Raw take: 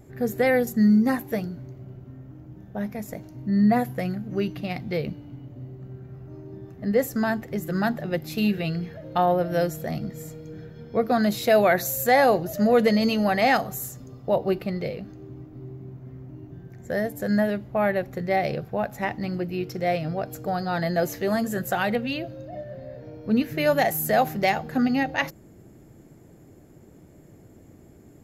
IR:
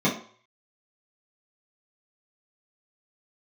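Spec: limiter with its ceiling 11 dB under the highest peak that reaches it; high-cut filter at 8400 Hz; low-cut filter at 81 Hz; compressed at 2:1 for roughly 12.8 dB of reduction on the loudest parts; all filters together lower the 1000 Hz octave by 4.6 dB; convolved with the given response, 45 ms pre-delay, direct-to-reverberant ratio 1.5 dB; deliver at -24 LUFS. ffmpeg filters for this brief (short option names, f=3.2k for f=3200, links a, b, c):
-filter_complex "[0:a]highpass=81,lowpass=8.4k,equalizer=f=1k:t=o:g=-7.5,acompressor=threshold=-40dB:ratio=2,alimiter=level_in=9dB:limit=-24dB:level=0:latency=1,volume=-9dB,asplit=2[a][b];[1:a]atrim=start_sample=2205,adelay=45[c];[b][c]afir=irnorm=-1:irlink=0,volume=-16dB[d];[a][d]amix=inputs=2:normalize=0,volume=9dB"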